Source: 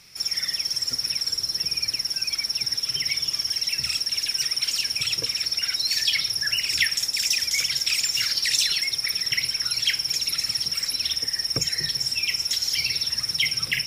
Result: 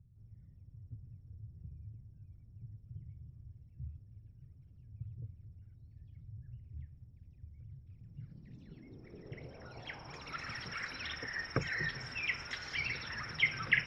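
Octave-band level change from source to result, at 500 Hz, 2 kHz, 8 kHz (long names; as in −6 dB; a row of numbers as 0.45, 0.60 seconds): −5.0, −9.0, −35.0 decibels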